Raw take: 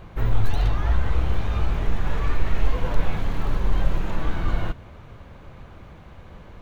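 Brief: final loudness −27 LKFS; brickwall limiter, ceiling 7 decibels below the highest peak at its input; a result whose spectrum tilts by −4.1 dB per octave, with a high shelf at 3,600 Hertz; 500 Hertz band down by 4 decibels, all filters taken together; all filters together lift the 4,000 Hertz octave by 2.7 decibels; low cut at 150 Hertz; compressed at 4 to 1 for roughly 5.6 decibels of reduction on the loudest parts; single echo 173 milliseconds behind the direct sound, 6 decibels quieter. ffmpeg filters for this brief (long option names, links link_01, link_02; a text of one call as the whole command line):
ffmpeg -i in.wav -af "highpass=150,equalizer=frequency=500:width_type=o:gain=-5,highshelf=frequency=3600:gain=-6.5,equalizer=frequency=4000:width_type=o:gain=7.5,acompressor=threshold=-35dB:ratio=4,alimiter=level_in=7.5dB:limit=-24dB:level=0:latency=1,volume=-7.5dB,aecho=1:1:173:0.501,volume=14dB" out.wav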